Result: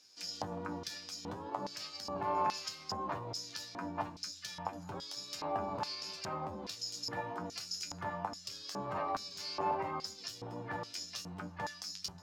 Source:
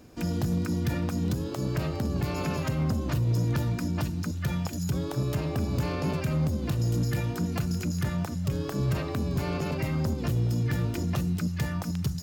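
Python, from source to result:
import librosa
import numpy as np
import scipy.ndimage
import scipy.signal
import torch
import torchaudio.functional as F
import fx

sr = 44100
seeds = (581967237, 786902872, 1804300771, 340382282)

y = fx.comb_fb(x, sr, f0_hz=97.0, decay_s=0.17, harmonics='all', damping=0.0, mix_pct=90)
y = fx.filter_lfo_bandpass(y, sr, shape='square', hz=1.2, low_hz=900.0, high_hz=5100.0, q=3.3)
y = y * 10.0 ** (13.5 / 20.0)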